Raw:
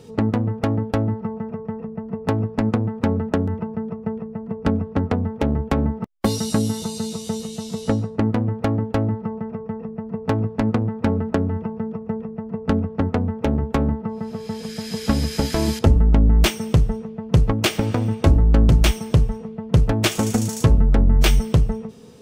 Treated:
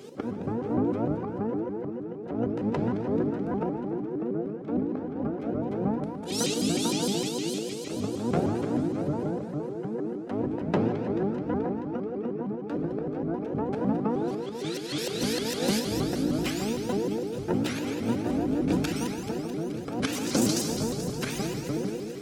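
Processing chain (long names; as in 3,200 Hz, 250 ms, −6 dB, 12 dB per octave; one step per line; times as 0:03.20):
pitch shifter gated in a rhythm −5 semitones, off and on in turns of 117 ms
high-pass filter 240 Hz 12 dB per octave
volume swells 158 ms
notch comb filter 1,000 Hz
delay with a high-pass on its return 216 ms, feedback 72%, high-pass 1,600 Hz, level −10 dB
feedback delay network reverb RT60 2 s, low-frequency decay 1.3×, high-frequency decay 0.9×, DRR 3 dB
pitch modulation by a square or saw wave saw up 6.5 Hz, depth 250 cents
level +1.5 dB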